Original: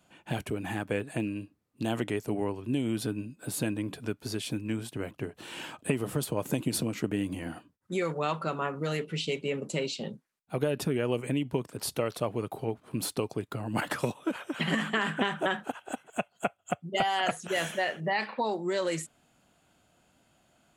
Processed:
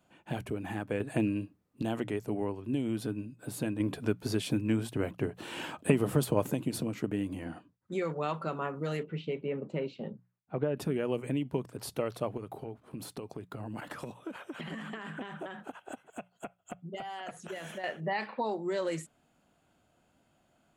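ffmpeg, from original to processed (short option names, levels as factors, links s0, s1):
-filter_complex "[0:a]asettb=1/sr,asplit=3[s0][s1][s2];[s0]atrim=end=1.004[s3];[s1]atrim=start=1:end=1.82,asetpts=PTS-STARTPTS,afade=t=in:d=0.004:c=qsin,afade=t=out:st=0.816:d=0.004:c=qsin,acontrast=34[s4];[s2]atrim=start=1.816[s5];[s3][s4]acrossfade=d=0.004:c1=hsin:c2=qsin[s6];[s6][s5]acrossfade=d=0.004:c1=qsin:c2=hsin,asettb=1/sr,asplit=3[s7][s8][s9];[s7]atrim=end=7.444[s10];[s8]atrim=start=7.44:end=8.22,asetpts=PTS-STARTPTS,afade=t=in:d=0.004:c=qsin,afade=t=out:st=0.776:d=0.004:c=qsin,lowpass=8600[s11];[s9]atrim=start=8.216[s12];[s10][s11]acrossfade=d=0.004:c1=hsin:c2=qsin[s13];[s13][s12]acrossfade=d=0.004:c1=qsin:c2=hsin,asettb=1/sr,asplit=3[s14][s15][s16];[s14]atrim=end=9.034[s17];[s15]atrim=start=9.03:end=10.77,asetpts=PTS-STARTPTS,afade=t=in:d=0.004:c=qsin,afade=t=out:st=1.736:d=0.004:c=qsin,lowpass=2100[s18];[s16]atrim=start=10.766[s19];[s17][s18]acrossfade=d=0.004:c1=hsin:c2=qsin[s20];[s20][s19]acrossfade=d=0.004:c1=qsin:c2=hsin,asettb=1/sr,asplit=3[s21][s22][s23];[s21]atrim=end=12.374[s24];[s22]atrim=start=12.37:end=17.84,asetpts=PTS-STARTPTS,afade=t=in:d=0.004:c=qsin,afade=t=out:st=5.466:d=0.004:c=qsin,acompressor=threshold=0.0224:ratio=6:attack=3.2:release=140:knee=1:detection=peak[s25];[s23]atrim=start=17.836[s26];[s24][s25]acrossfade=d=0.004:c1=hsin:c2=qsin[s27];[s27][s26]acrossfade=d=0.004:c1=qsin:c2=hsin,asplit=3[s28][s29][s30];[s28]atrim=end=3.802[s31];[s29]atrim=start=3.798:end=6.502,asetpts=PTS-STARTPTS,volume=2[s32];[s30]atrim=start=6.498[s33];[s31][s32]acrossfade=d=0.004:c1=hsin:c2=hsin[s34];[s34][s33]acrossfade=d=0.004:c1=hsin:c2=hsin,lowpass=f=1400:p=1,aemphasis=mode=production:type=50kf,bandreject=f=60:t=h:w=6,bandreject=f=120:t=h:w=6,bandreject=f=180:t=h:w=6,volume=0.794"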